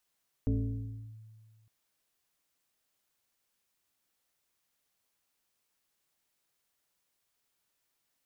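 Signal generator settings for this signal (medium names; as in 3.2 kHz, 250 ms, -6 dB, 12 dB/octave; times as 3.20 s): FM tone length 1.21 s, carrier 110 Hz, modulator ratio 1.48, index 1.3, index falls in 0.71 s linear, decay 1.85 s, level -24 dB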